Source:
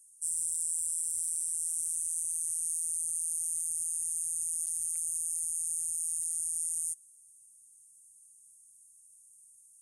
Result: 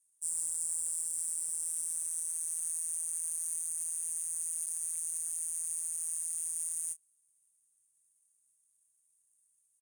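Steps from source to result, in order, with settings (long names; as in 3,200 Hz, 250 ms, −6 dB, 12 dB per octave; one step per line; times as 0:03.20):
double-tracking delay 28 ms −8.5 dB
power curve on the samples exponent 1.4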